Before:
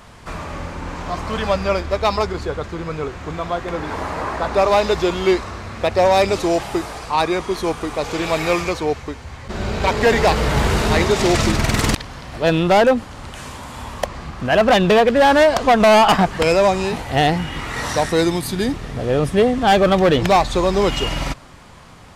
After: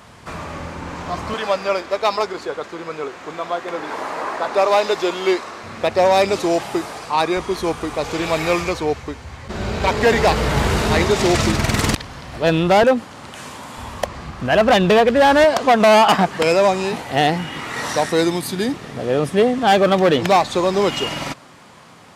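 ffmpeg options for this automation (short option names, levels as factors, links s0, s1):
-af "asetnsamples=n=441:p=0,asendcmd='1.34 highpass f 320;5.63 highpass f 140;7.37 highpass f 50;12.83 highpass f 150;13.78 highpass f 54;15.44 highpass f 160',highpass=77"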